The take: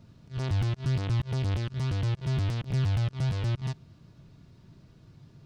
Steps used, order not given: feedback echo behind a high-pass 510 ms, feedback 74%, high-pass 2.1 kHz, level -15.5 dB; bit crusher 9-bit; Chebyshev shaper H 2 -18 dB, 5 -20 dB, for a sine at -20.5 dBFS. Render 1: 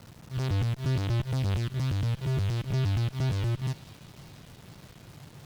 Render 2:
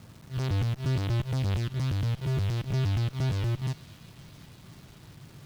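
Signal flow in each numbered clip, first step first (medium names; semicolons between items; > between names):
bit crusher > Chebyshev shaper > feedback echo behind a high-pass; Chebyshev shaper > bit crusher > feedback echo behind a high-pass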